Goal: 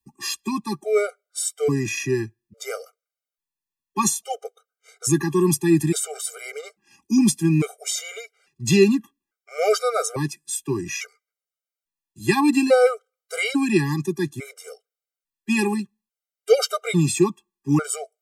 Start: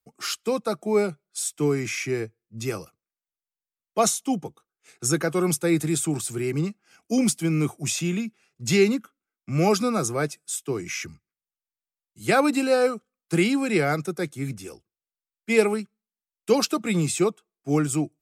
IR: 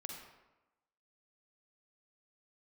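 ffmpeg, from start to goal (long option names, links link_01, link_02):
-af "afftfilt=real='re*gt(sin(2*PI*0.59*pts/sr)*(1-2*mod(floor(b*sr/1024/400),2)),0)':imag='im*gt(sin(2*PI*0.59*pts/sr)*(1-2*mod(floor(b*sr/1024/400),2)),0)':win_size=1024:overlap=0.75,volume=5dB"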